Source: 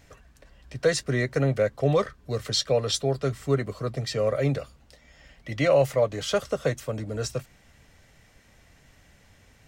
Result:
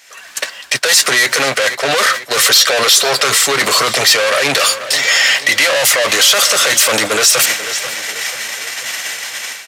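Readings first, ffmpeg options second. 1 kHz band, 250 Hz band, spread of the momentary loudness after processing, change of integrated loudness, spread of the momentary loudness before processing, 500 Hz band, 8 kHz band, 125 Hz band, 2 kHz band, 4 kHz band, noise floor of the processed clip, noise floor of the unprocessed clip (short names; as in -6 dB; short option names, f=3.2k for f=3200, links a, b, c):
+17.5 dB, +2.5 dB, 12 LU, +15.0 dB, 10 LU, +6.5 dB, +26.0 dB, -6.5 dB, +24.0 dB, +23.0 dB, -35 dBFS, -58 dBFS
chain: -filter_complex "[0:a]areverse,acompressor=threshold=-31dB:ratio=6,areverse,asplit=2[a][b];[b]highpass=f=720:p=1,volume=27dB,asoftclip=type=tanh:threshold=-22dB[c];[a][c]amix=inputs=2:normalize=0,lowpass=f=2.2k:p=1,volume=-6dB,aderivative,aresample=32000,aresample=44100,dynaudnorm=f=120:g=3:m=16.5dB,agate=range=-16dB:threshold=-35dB:ratio=16:detection=peak,asplit=2[d][e];[e]adelay=487,lowpass=f=4.9k:p=1,volume=-17dB,asplit=2[f][g];[g]adelay=487,lowpass=f=4.9k:p=1,volume=0.51,asplit=2[h][i];[i]adelay=487,lowpass=f=4.9k:p=1,volume=0.51,asplit=2[j][k];[k]adelay=487,lowpass=f=4.9k:p=1,volume=0.51[l];[d][f][h][j][l]amix=inputs=5:normalize=0,alimiter=level_in=25dB:limit=-1dB:release=50:level=0:latency=1,volume=-1.5dB"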